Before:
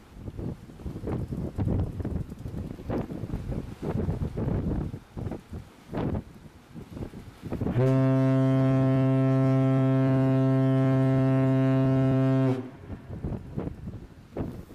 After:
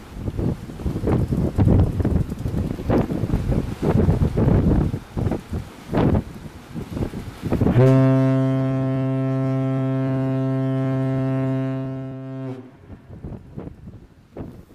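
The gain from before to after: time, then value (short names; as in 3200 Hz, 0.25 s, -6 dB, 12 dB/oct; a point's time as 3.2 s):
7.59 s +11.5 dB
8.7 s +1 dB
11.54 s +1 dB
12.22 s -10.5 dB
12.73 s -1 dB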